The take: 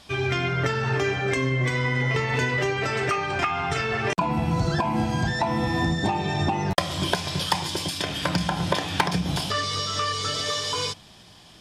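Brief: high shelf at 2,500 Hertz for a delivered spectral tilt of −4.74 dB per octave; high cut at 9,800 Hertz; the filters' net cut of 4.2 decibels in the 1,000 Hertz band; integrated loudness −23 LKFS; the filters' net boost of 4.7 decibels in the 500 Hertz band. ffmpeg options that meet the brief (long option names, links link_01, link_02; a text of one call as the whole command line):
ffmpeg -i in.wav -af "lowpass=9800,equalizer=frequency=500:width_type=o:gain=8,equalizer=frequency=1000:width_type=o:gain=-7.5,highshelf=frequency=2500:gain=-4,volume=2dB" out.wav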